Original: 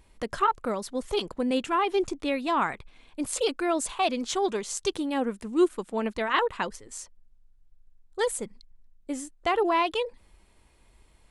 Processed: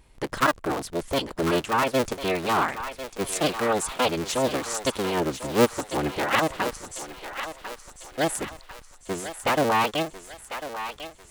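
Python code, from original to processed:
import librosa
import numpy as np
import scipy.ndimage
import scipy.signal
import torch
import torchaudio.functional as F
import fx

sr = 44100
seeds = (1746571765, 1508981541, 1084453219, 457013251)

y = fx.cycle_switch(x, sr, every=3, mode='inverted')
y = fx.echo_thinned(y, sr, ms=1047, feedback_pct=54, hz=630.0, wet_db=-9)
y = y * librosa.db_to_amplitude(2.0)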